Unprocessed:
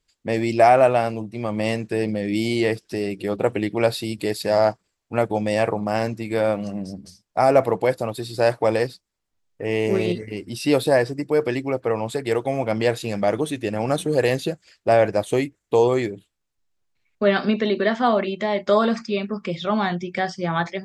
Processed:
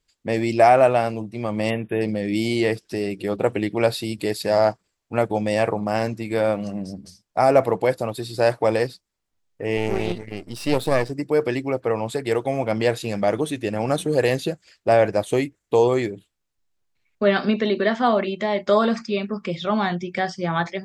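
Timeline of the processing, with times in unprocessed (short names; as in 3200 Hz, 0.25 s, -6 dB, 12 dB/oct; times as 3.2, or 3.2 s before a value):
1.7–2.02 spectral delete 3700–9600 Hz
9.77–11.1 half-wave gain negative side -12 dB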